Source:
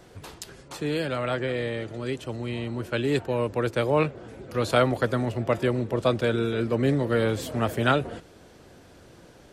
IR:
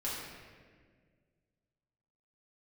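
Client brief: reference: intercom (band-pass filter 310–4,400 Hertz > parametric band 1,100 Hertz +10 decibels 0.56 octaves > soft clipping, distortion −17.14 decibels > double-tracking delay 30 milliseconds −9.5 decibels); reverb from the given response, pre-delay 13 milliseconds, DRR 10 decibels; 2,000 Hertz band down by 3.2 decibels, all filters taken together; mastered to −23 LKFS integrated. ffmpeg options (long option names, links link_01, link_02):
-filter_complex "[0:a]equalizer=frequency=2000:width_type=o:gain=-8,asplit=2[link_01][link_02];[1:a]atrim=start_sample=2205,adelay=13[link_03];[link_02][link_03]afir=irnorm=-1:irlink=0,volume=-14dB[link_04];[link_01][link_04]amix=inputs=2:normalize=0,highpass=310,lowpass=4400,equalizer=frequency=1100:width_type=o:width=0.56:gain=10,asoftclip=threshold=-14dB,asplit=2[link_05][link_06];[link_06]adelay=30,volume=-9.5dB[link_07];[link_05][link_07]amix=inputs=2:normalize=0,volume=5dB"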